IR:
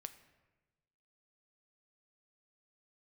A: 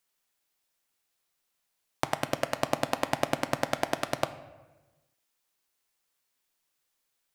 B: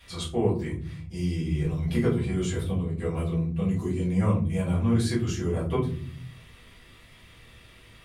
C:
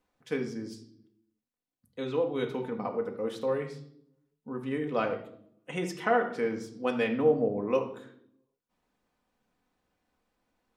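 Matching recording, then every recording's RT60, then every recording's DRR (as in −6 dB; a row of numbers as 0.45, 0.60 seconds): A; 1.2, 0.45, 0.70 seconds; 9.5, −8.5, 2.0 decibels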